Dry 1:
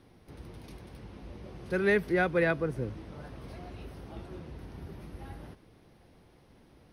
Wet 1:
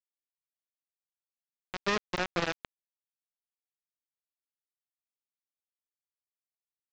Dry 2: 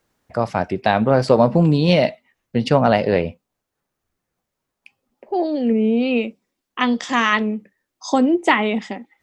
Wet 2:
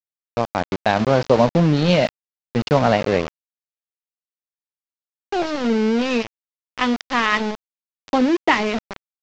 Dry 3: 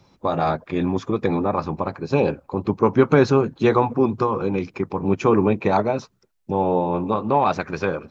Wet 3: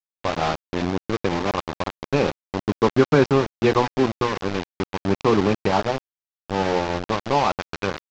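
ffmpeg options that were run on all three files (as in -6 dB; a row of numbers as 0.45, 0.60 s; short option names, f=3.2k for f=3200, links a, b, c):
-af "aresample=16000,aeval=exprs='val(0)*gte(abs(val(0)),0.1)':c=same,aresample=44100,lowpass=f=5.6k:w=0.5412,lowpass=f=5.6k:w=1.3066,volume=-1dB"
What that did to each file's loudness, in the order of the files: -2.5, -1.0, -1.5 LU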